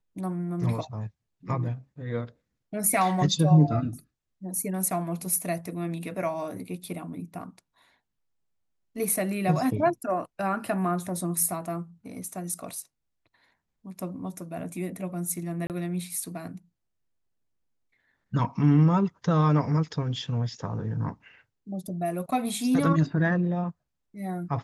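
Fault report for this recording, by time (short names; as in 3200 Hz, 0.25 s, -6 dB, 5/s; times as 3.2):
15.67–15.7 gap 28 ms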